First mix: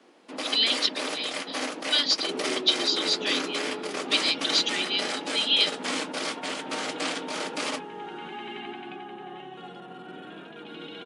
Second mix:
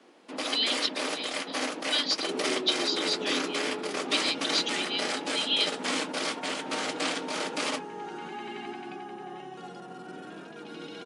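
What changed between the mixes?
speech −4.5 dB
second sound: add high shelf with overshoot 4,200 Hz +7 dB, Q 3

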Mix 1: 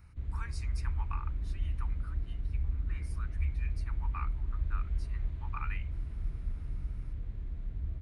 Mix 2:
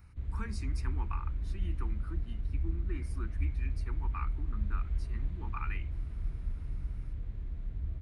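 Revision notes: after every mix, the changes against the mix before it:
speech: remove high-pass filter 710 Hz 24 dB per octave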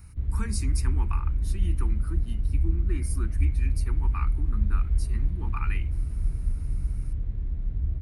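speech: remove head-to-tape spacing loss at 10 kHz 21 dB
master: add low-shelf EQ 480 Hz +9 dB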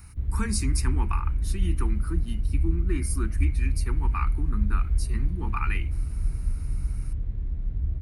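speech +5.5 dB

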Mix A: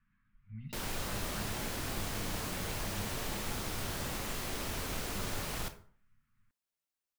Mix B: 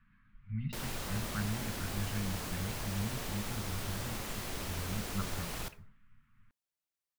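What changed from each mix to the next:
speech +8.5 dB
background: send −6.0 dB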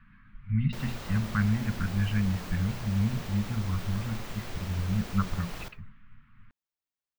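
speech +10.5 dB
master: add parametric band 11,000 Hz −9.5 dB 1.3 octaves

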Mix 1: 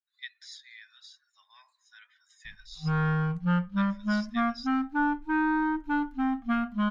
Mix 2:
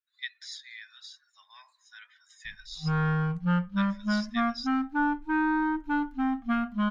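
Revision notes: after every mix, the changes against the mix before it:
speech +4.5 dB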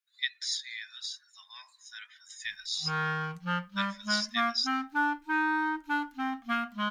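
master: add spectral tilt +4 dB per octave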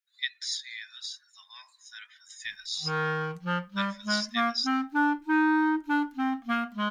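background: add parametric band 380 Hz +13.5 dB 0.96 octaves

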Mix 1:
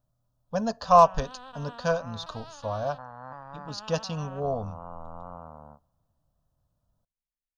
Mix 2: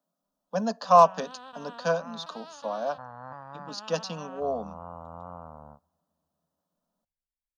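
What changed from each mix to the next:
speech: add Butterworth high-pass 170 Hz 72 dB per octave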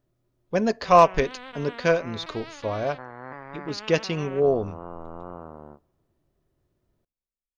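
speech: remove Butterworth high-pass 170 Hz 72 dB per octave
master: remove phaser with its sweep stopped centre 890 Hz, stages 4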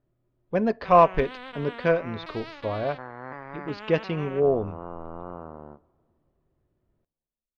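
speech: add high-frequency loss of the air 330 metres
background: send +7.5 dB

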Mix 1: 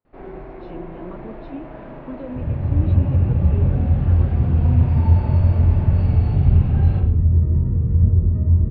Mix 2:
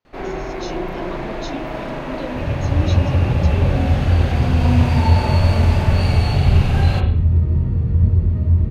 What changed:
speech: remove high-frequency loss of the air 290 metres
first sound +7.5 dB
master: remove head-to-tape spacing loss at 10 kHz 41 dB

